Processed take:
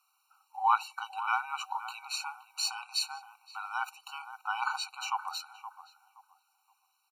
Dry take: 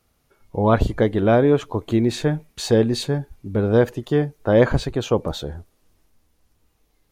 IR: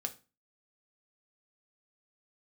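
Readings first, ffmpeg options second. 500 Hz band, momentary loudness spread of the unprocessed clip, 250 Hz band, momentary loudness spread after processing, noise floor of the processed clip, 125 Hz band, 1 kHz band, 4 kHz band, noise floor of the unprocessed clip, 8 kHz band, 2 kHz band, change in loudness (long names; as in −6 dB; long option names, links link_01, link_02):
below −40 dB, 10 LU, below −40 dB, 16 LU, −75 dBFS, below −40 dB, −2.0 dB, −3.5 dB, −66 dBFS, −3.0 dB, −5.5 dB, −13.5 dB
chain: -filter_complex "[0:a]afreqshift=-63,asplit=2[link_01][link_02];[link_02]adelay=521,lowpass=frequency=930:poles=1,volume=-9dB,asplit=2[link_03][link_04];[link_04]adelay=521,lowpass=frequency=930:poles=1,volume=0.32,asplit=2[link_05][link_06];[link_06]adelay=521,lowpass=frequency=930:poles=1,volume=0.32,asplit=2[link_07][link_08];[link_08]adelay=521,lowpass=frequency=930:poles=1,volume=0.32[link_09];[link_01][link_03][link_05][link_07][link_09]amix=inputs=5:normalize=0,afftfilt=real='re*eq(mod(floor(b*sr/1024/760),2),1)':imag='im*eq(mod(floor(b*sr/1024/760),2),1)':win_size=1024:overlap=0.75"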